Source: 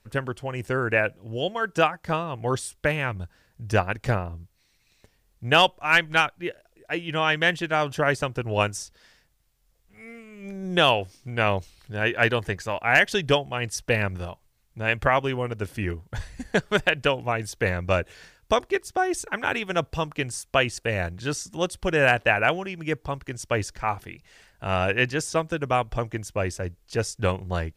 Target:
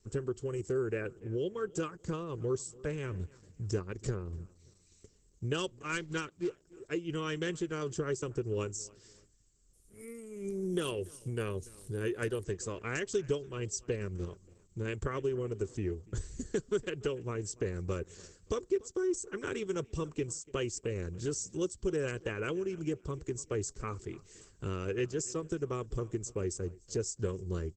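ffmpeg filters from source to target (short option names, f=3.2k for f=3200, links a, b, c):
-filter_complex "[0:a]bandreject=f=2.6k:w=17,asplit=3[a][b][c];[a]afade=t=out:st=2.71:d=0.02[d];[b]bandreject=f=253.1:t=h:w=4,bandreject=f=506.2:t=h:w=4,bandreject=f=759.3:t=h:w=4,bandreject=f=1.0124k:t=h:w=4,bandreject=f=1.2655k:t=h:w=4,bandreject=f=1.5186k:t=h:w=4,bandreject=f=1.7717k:t=h:w=4,bandreject=f=2.0248k:t=h:w=4,bandreject=f=2.2779k:t=h:w=4,bandreject=f=2.531k:t=h:w=4,bandreject=f=2.7841k:t=h:w=4,bandreject=f=3.0372k:t=h:w=4,bandreject=f=3.2903k:t=h:w=4,bandreject=f=3.5434k:t=h:w=4,afade=t=in:st=2.71:d=0.02,afade=t=out:st=3.68:d=0.02[e];[c]afade=t=in:st=3.68:d=0.02[f];[d][e][f]amix=inputs=3:normalize=0,acrossover=split=880[g][h];[h]aexciter=amount=5.3:drive=2.9:freq=2.7k[i];[g][i]amix=inputs=2:normalize=0,firequalizer=gain_entry='entry(150,0);entry(260,-2);entry(390,9);entry(740,-26);entry(1100,-6);entry(2000,-13);entry(3500,-20);entry(9300,2);entry(14000,-22)':delay=0.05:min_phase=1,acompressor=threshold=-34dB:ratio=2.5,asplit=3[j][k][l];[j]afade=t=out:st=1.18:d=0.02[m];[k]highshelf=f=4.2k:g=-10.5,afade=t=in:st=1.18:d=0.02,afade=t=out:st=1.72:d=0.02[n];[l]afade=t=in:st=1.72:d=0.02[o];[m][n][o]amix=inputs=3:normalize=0,asplit=3[p][q][r];[p]afade=t=out:st=5.66:d=0.02[s];[q]acrusher=bits=5:mode=log:mix=0:aa=0.000001,afade=t=in:st=5.66:d=0.02,afade=t=out:st=6.49:d=0.02[t];[r]afade=t=in:st=6.49:d=0.02[u];[s][t][u]amix=inputs=3:normalize=0,asplit=2[v][w];[w]adelay=289,lowpass=f=4.1k:p=1,volume=-22dB,asplit=2[x][y];[y]adelay=289,lowpass=f=4.1k:p=1,volume=0.35[z];[x][z]amix=inputs=2:normalize=0[aa];[v][aa]amix=inputs=2:normalize=0" -ar 48000 -c:a libopus -b:a 12k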